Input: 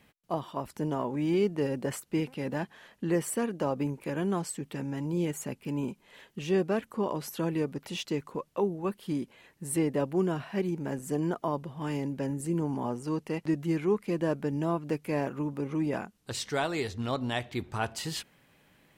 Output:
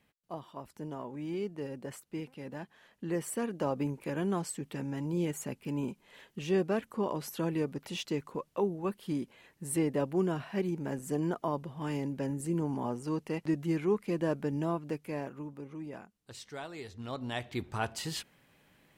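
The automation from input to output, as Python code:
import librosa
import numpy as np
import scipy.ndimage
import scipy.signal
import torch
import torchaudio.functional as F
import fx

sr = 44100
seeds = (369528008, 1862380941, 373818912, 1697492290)

y = fx.gain(x, sr, db=fx.line((2.62, -9.5), (3.65, -2.0), (14.59, -2.0), (15.78, -12.5), (16.76, -12.5), (17.55, -2.0)))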